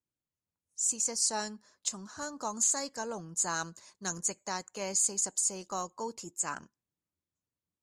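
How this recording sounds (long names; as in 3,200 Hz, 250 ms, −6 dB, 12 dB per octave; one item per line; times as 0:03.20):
background noise floor −94 dBFS
spectral slope −1.0 dB per octave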